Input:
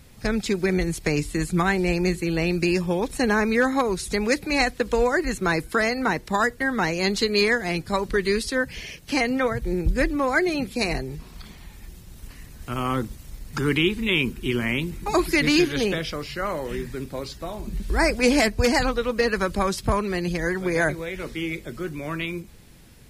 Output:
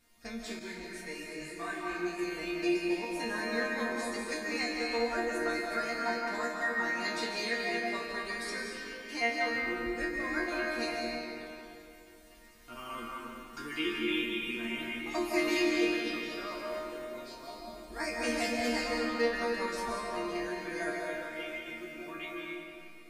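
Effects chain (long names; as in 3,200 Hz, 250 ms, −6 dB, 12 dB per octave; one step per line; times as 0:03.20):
low-shelf EQ 200 Hz −10.5 dB
resonators tuned to a chord A#3 sus4, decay 0.38 s
comb and all-pass reverb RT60 2.9 s, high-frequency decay 0.6×, pre-delay 115 ms, DRR −1.5 dB
0:00.59–0:02.19: micro pitch shift up and down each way 27 cents
level +6 dB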